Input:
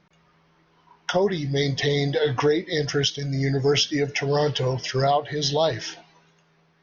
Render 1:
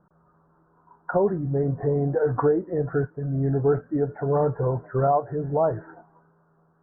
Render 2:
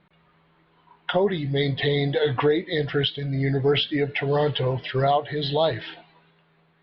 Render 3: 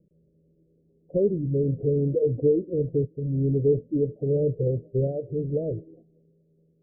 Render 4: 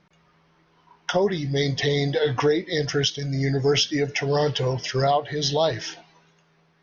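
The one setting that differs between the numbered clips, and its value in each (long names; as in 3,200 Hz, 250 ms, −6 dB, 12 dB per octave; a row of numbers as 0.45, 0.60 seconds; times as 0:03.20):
Butterworth low-pass, frequency: 1,500, 4,200, 550, 11,000 Hertz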